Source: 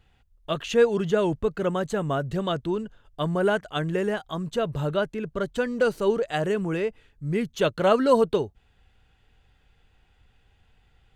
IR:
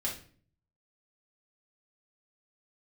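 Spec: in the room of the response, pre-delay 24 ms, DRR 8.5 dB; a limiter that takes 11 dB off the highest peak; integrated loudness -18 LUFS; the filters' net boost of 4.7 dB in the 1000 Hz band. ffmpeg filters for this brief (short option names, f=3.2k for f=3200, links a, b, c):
-filter_complex "[0:a]equalizer=f=1k:t=o:g=6,alimiter=limit=-14dB:level=0:latency=1,asplit=2[a][b];[1:a]atrim=start_sample=2205,adelay=24[c];[b][c]afir=irnorm=-1:irlink=0,volume=-12dB[d];[a][d]amix=inputs=2:normalize=0,volume=7.5dB"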